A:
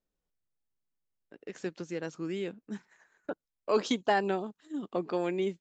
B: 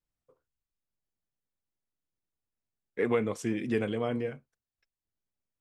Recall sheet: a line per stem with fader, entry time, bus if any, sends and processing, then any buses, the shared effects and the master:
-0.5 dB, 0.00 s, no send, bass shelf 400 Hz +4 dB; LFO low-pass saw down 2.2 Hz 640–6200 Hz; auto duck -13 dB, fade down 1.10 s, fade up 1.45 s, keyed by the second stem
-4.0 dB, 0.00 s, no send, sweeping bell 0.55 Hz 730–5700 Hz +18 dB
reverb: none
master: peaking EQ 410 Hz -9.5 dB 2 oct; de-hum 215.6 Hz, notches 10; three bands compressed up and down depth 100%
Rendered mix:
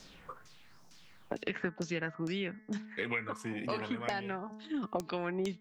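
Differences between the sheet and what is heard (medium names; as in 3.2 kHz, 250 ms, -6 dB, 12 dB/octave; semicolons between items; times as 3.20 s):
stem A -0.5 dB -> +6.0 dB; stem B -4.0 dB -> -11.5 dB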